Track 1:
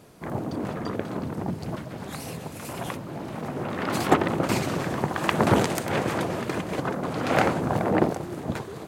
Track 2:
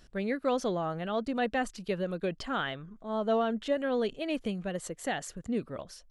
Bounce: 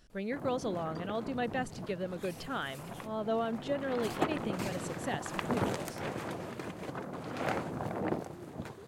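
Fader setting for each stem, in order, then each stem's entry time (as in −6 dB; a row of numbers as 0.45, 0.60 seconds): −12.0, −4.5 decibels; 0.10, 0.00 seconds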